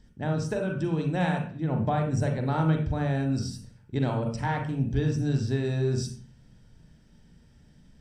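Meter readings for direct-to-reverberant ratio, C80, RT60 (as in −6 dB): 3.0 dB, 10.0 dB, 0.45 s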